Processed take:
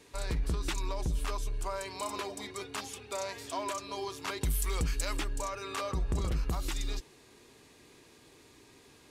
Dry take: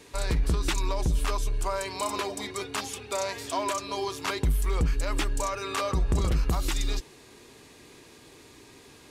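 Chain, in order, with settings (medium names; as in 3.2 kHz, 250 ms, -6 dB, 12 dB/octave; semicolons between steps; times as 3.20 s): 4.41–5.17 s: treble shelf 2.4 kHz +11.5 dB; trim -6.5 dB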